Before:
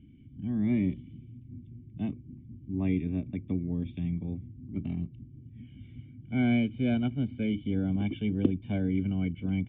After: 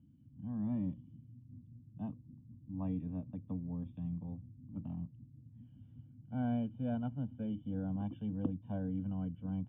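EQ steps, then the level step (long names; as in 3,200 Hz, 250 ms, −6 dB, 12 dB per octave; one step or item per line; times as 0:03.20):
high-frequency loss of the air 150 metres
loudspeaker in its box 100–2,900 Hz, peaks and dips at 320 Hz +5 dB, 480 Hz +7 dB, 950 Hz +7 dB
phaser with its sweep stopped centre 910 Hz, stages 4
−4.5 dB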